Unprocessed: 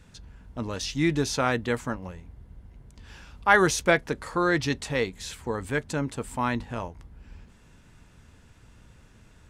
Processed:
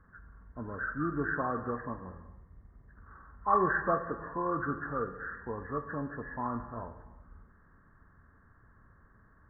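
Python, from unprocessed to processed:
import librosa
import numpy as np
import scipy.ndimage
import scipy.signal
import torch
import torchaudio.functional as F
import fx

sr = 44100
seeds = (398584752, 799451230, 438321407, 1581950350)

y = fx.freq_compress(x, sr, knee_hz=1000.0, ratio=4.0)
y = fx.rev_gated(y, sr, seeds[0], gate_ms=450, shape='falling', drr_db=8.0)
y = y * librosa.db_to_amplitude(-8.5)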